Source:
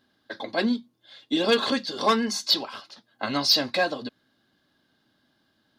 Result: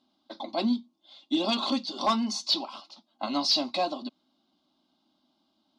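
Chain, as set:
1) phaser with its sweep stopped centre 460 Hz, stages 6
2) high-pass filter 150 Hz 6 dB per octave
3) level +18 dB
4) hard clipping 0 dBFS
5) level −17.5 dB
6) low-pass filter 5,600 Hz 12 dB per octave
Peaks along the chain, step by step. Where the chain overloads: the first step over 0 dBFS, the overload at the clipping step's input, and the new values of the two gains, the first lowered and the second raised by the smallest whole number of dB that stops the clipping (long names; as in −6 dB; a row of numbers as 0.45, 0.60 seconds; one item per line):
−9.5, −9.5, +8.5, 0.0, −17.5, −17.0 dBFS
step 3, 8.5 dB
step 3 +9 dB, step 5 −8.5 dB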